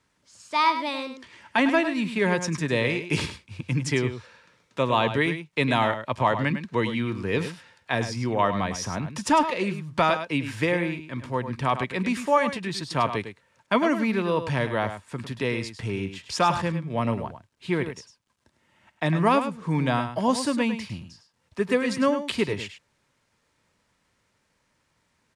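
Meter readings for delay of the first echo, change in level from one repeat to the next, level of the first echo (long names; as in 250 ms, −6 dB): 103 ms, repeats not evenly spaced, −10.0 dB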